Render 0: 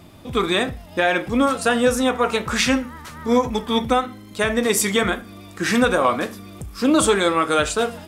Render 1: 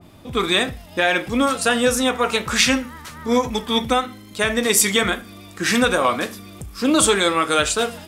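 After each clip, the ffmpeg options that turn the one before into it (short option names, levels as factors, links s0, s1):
-af "adynamicequalizer=threshold=0.0251:dfrequency=1800:dqfactor=0.7:tfrequency=1800:tqfactor=0.7:attack=5:release=100:ratio=0.375:range=3:mode=boostabove:tftype=highshelf,volume=0.891"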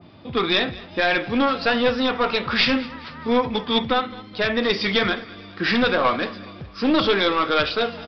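-af "highpass=87,aresample=11025,aeval=exprs='clip(val(0),-1,0.15)':c=same,aresample=44100,aecho=1:1:211|422|633:0.1|0.046|0.0212"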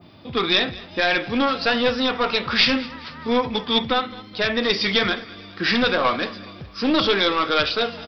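-af "aemphasis=mode=production:type=50kf,volume=0.891"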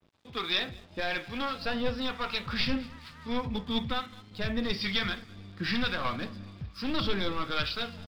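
-filter_complex "[0:a]asubboost=boost=6.5:cutoff=160,acrossover=split=860[s0][s1];[s0]aeval=exprs='val(0)*(1-0.5/2+0.5/2*cos(2*PI*1.1*n/s))':c=same[s2];[s1]aeval=exprs='val(0)*(1-0.5/2-0.5/2*cos(2*PI*1.1*n/s))':c=same[s3];[s2][s3]amix=inputs=2:normalize=0,aeval=exprs='sgn(val(0))*max(abs(val(0))-0.00473,0)':c=same,volume=0.376"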